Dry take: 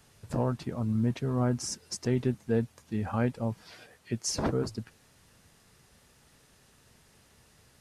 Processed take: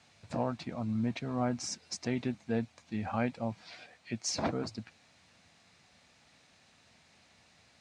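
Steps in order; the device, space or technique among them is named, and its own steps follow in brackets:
car door speaker (loudspeaker in its box 97–7,600 Hz, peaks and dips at 130 Hz −6 dB, 410 Hz −8 dB, 710 Hz +6 dB, 2,300 Hz +8 dB, 4,000 Hz +6 dB)
level −2.5 dB

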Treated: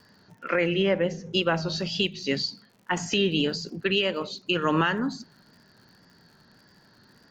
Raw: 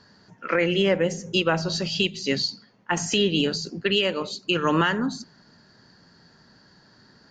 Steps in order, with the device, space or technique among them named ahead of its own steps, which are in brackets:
lo-fi chain (low-pass filter 5,700 Hz 12 dB per octave; tape wow and flutter; surface crackle 83 per second −45 dBFS)
0:00.69–0:01.35: high-frequency loss of the air 79 metres
level −2 dB

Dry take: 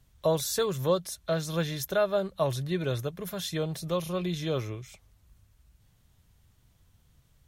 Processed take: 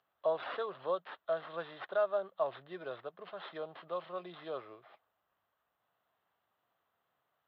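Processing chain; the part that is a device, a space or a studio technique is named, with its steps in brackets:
toy sound module (linearly interpolated sample-rate reduction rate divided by 6×; switching amplifier with a slow clock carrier 12,000 Hz; loudspeaker in its box 510–3,600 Hz, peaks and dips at 690 Hz +6 dB, 1,200 Hz +5 dB, 2,300 Hz −8 dB)
level −7 dB

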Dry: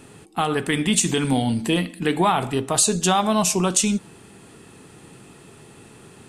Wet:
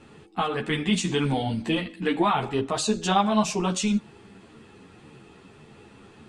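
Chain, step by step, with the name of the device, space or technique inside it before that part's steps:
string-machine ensemble chorus (string-ensemble chorus; low-pass filter 4,600 Hz 12 dB per octave)

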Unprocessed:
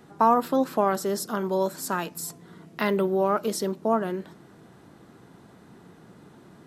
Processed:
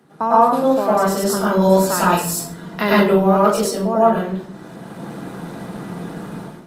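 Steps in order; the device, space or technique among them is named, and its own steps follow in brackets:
far-field microphone of a smart speaker (convolution reverb RT60 0.55 s, pre-delay 94 ms, DRR −7 dB; high-pass filter 120 Hz 24 dB per octave; automatic gain control gain up to 14.5 dB; level −1 dB; Opus 32 kbit/s 48,000 Hz)

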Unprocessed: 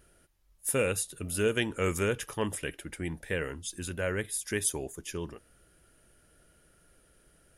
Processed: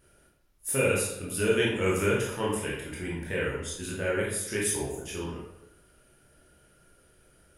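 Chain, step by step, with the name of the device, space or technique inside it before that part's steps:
bathroom (convolution reverb RT60 0.85 s, pre-delay 18 ms, DRR −5.5 dB)
level −3.5 dB

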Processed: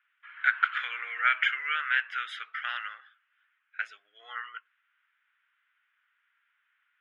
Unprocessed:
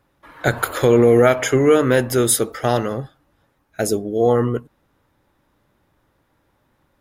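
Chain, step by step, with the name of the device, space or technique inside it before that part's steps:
Chebyshev band-pass filter 1,400–3,300 Hz, order 3
exciter from parts (in parallel at −4.5 dB: high-pass filter 2,900 Hz 24 dB per octave + soft clipping −15.5 dBFS, distortion −38 dB + high-pass filter 2,300 Hz 12 dB per octave)

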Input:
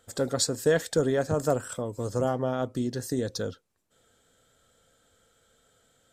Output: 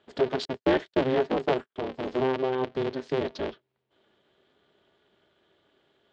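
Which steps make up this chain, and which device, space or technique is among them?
0:00.45–0:01.76: noise gate −29 dBFS, range −49 dB
ring modulator pedal into a guitar cabinet (ring modulator with a square carrier 130 Hz; loudspeaker in its box 87–3,900 Hz, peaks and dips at 110 Hz −6 dB, 410 Hz +8 dB, 1,300 Hz −3 dB, 3,100 Hz +3 dB)
level −1.5 dB

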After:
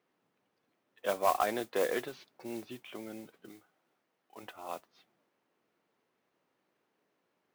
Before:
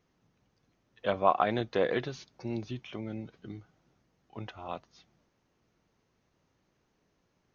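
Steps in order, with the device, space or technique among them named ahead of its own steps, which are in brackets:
carbon microphone (band-pass filter 300–3,600 Hz; soft clipping −14 dBFS, distortion −17 dB; noise that follows the level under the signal 15 dB)
0:03.49–0:04.43: low-shelf EQ 350 Hz −7.5 dB
level −1.5 dB

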